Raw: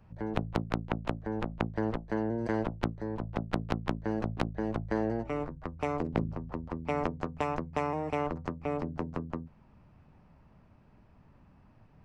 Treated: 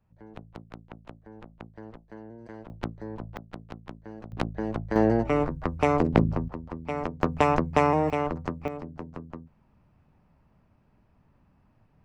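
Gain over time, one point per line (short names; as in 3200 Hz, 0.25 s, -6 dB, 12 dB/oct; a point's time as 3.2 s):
-13 dB
from 2.7 s -2 dB
from 3.37 s -10.5 dB
from 4.32 s +2 dB
from 4.96 s +9.5 dB
from 6.48 s 0 dB
from 7.23 s +10 dB
from 8.1 s +4 dB
from 8.68 s -4 dB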